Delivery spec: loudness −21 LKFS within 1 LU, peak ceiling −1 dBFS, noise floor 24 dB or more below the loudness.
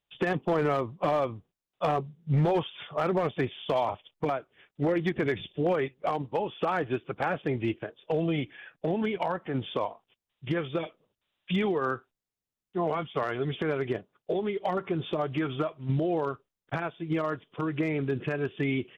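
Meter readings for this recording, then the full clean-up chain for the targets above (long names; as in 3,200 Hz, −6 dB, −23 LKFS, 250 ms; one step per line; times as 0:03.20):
share of clipped samples 0.7%; peaks flattened at −19.5 dBFS; integrated loudness −30.5 LKFS; sample peak −19.5 dBFS; target loudness −21.0 LKFS
→ clipped peaks rebuilt −19.5 dBFS
level +9.5 dB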